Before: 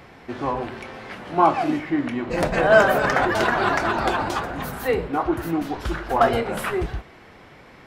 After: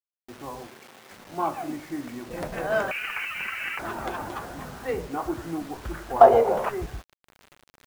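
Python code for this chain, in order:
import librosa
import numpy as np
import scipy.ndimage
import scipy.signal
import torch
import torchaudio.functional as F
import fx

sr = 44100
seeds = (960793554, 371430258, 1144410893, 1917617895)

y = fx.wiener(x, sr, points=9)
y = fx.freq_invert(y, sr, carrier_hz=3000, at=(2.91, 3.79))
y = fx.rider(y, sr, range_db=4, speed_s=2.0)
y = fx.quant_dither(y, sr, seeds[0], bits=6, dither='none')
y = fx.bessel_highpass(y, sr, hz=170.0, order=2, at=(0.67, 1.11))
y = fx.band_shelf(y, sr, hz=640.0, db=13.5, octaves=1.7, at=(6.21, 6.69))
y = F.gain(torch.from_numpy(y), -10.0).numpy()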